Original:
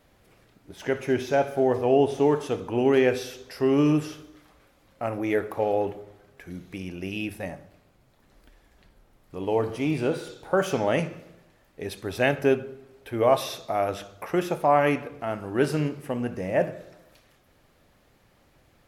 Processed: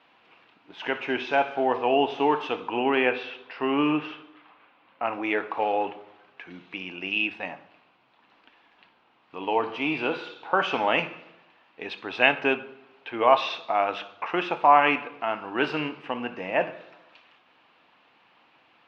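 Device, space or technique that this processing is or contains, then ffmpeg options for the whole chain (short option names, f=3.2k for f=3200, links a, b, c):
phone earpiece: -filter_complex "[0:a]highpass=400,equalizer=f=400:t=q:w=4:g=-7,equalizer=f=570:t=q:w=4:g=-9,equalizer=f=980:t=q:w=4:g=5,equalizer=f=1.9k:t=q:w=4:g=-3,equalizer=f=2.7k:t=q:w=4:g=7,lowpass=f=3.7k:w=0.5412,lowpass=f=3.7k:w=1.3066,asettb=1/sr,asplit=3[a][b][c];[a]atrim=end=2.794[d];[b]atrim=start=2.79:end=5.06,asetpts=PTS-STARTPTS,afade=t=in:d=0.004:c=qsin,afade=t=out:st=2.266:d=0.004:c=qsin,lowpass=3k[e];[c]atrim=start=5.056[f];[d][e]acrossfade=d=0.004:c1=hsin:c2=qsin[g];[g][f]acrossfade=d=0.004:c1=qsin:c2=hsin,volume=5dB"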